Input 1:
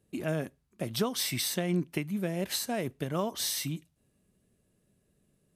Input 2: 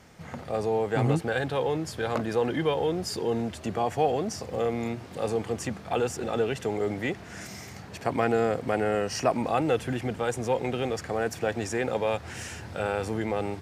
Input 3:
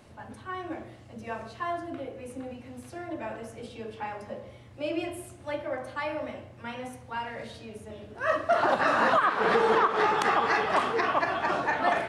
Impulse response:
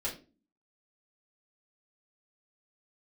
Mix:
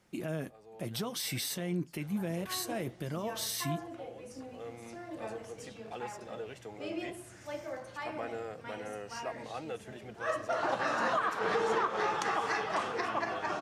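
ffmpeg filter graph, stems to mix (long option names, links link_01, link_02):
-filter_complex "[0:a]alimiter=level_in=1dB:limit=-24dB:level=0:latency=1:release=18,volume=-1dB,volume=2.5dB,asplit=2[link_01][link_02];[1:a]lowshelf=frequency=240:gain=-9,volume=-10dB[link_03];[2:a]equalizer=frequency=6200:width_type=o:width=0.65:gain=8,adelay=2000,volume=-3.5dB[link_04];[link_02]apad=whole_len=600322[link_05];[link_03][link_05]sidechaincompress=threshold=-46dB:ratio=3:attack=11:release=866[link_06];[link_01][link_06][link_04]amix=inputs=3:normalize=0,flanger=delay=5.5:depth=1.1:regen=-59:speed=1:shape=triangular"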